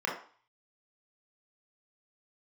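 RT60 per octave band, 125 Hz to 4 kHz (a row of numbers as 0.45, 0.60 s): 0.35, 0.40, 0.40, 0.50, 0.40, 0.45 s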